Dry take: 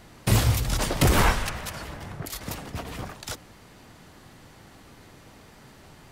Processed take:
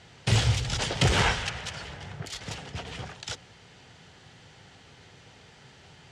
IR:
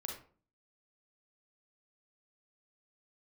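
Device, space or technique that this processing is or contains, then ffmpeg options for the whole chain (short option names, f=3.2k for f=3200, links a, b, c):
car door speaker: -af "highpass=80,equalizer=f=220:t=q:w=4:g=-8,equalizer=f=310:t=q:w=4:g=-10,equalizer=f=610:t=q:w=4:g=-5,equalizer=f=1.1k:t=q:w=4:g=-8,equalizer=f=3.1k:t=q:w=4:g=5,lowpass=f=7.4k:w=0.5412,lowpass=f=7.4k:w=1.3066"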